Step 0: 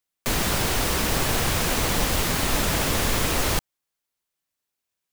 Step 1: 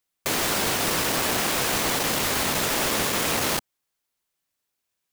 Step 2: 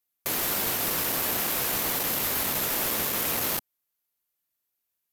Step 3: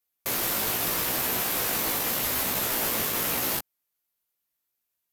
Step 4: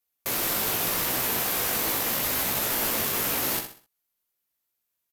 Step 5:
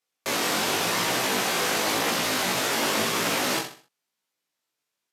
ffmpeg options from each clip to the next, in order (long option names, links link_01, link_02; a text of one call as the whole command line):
ffmpeg -i in.wav -af "aeval=exprs='0.335*sin(PI/2*2.24*val(0)/0.335)':channel_layout=same,afftfilt=real='re*lt(hypot(re,im),0.708)':imag='im*lt(hypot(re,im),0.708)':win_size=1024:overlap=0.75,volume=-8dB" out.wav
ffmpeg -i in.wav -af "equalizer=frequency=13000:width=1.8:gain=14.5,volume=-6.5dB" out.wav
ffmpeg -i in.wav -af "flanger=delay=15.5:depth=2.9:speed=0.83,volume=3.5dB" out.wav
ffmpeg -i in.wav -af "aecho=1:1:64|128|192|256:0.398|0.139|0.0488|0.0171" out.wav
ffmpeg -i in.wav -af "flanger=delay=17:depth=5.5:speed=0.94,highpass=160,lowpass=7000,volume=8.5dB" out.wav